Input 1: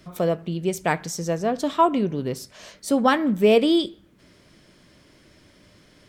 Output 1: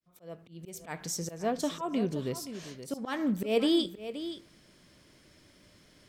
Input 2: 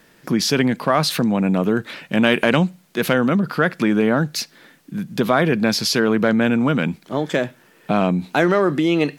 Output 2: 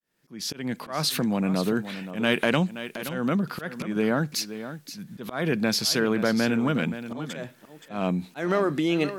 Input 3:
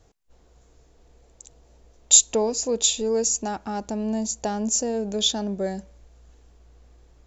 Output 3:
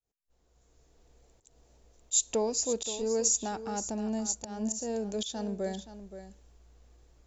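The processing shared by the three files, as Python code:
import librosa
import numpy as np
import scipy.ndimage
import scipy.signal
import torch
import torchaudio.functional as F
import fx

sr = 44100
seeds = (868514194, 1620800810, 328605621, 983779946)

p1 = fx.fade_in_head(x, sr, length_s=0.97)
p2 = fx.high_shelf(p1, sr, hz=4800.0, db=5.5)
p3 = fx.auto_swell(p2, sr, attack_ms=184.0)
p4 = p3 + fx.echo_single(p3, sr, ms=524, db=-12.0, dry=0)
y = F.gain(torch.from_numpy(p4), -6.5).numpy()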